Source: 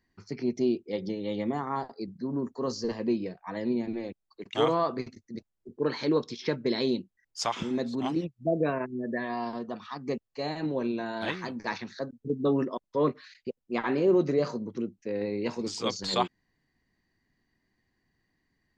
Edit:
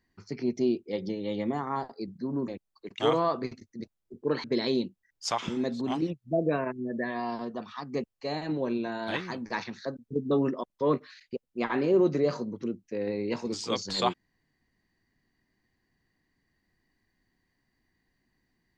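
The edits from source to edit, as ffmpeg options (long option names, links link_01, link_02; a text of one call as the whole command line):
ffmpeg -i in.wav -filter_complex "[0:a]asplit=3[link_01][link_02][link_03];[link_01]atrim=end=2.482[link_04];[link_02]atrim=start=4.028:end=5.992[link_05];[link_03]atrim=start=6.578[link_06];[link_04][link_05]acrossfade=duration=0.004:curve1=hsin:curve2=hsin[link_07];[link_07][link_06]acrossfade=duration=0.004:curve1=hsin:curve2=hsin" out.wav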